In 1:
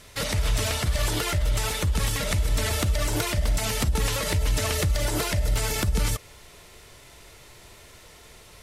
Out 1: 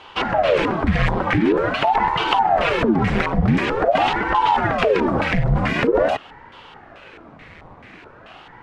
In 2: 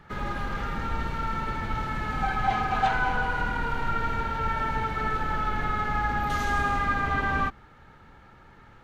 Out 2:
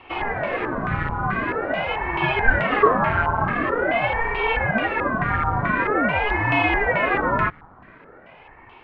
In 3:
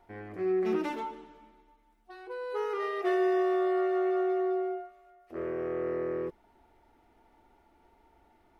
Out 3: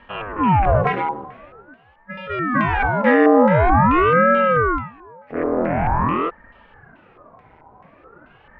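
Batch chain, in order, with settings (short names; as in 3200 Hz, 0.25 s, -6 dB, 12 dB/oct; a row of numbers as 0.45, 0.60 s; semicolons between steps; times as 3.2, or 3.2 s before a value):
LFO low-pass square 2.3 Hz 980–2100 Hz; ring modulator with a swept carrier 510 Hz, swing 85%, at 0.46 Hz; normalise peaks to -1.5 dBFS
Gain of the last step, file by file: +8.5, +6.0, +15.0 dB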